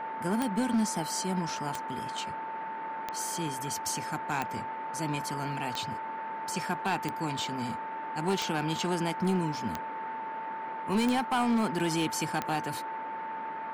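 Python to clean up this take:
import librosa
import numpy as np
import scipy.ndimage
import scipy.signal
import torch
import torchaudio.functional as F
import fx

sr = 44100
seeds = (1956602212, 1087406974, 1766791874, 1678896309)

y = fx.fix_declip(x, sr, threshold_db=-22.0)
y = fx.fix_declick_ar(y, sr, threshold=10.0)
y = fx.notch(y, sr, hz=890.0, q=30.0)
y = fx.noise_reduce(y, sr, print_start_s=2.34, print_end_s=2.84, reduce_db=30.0)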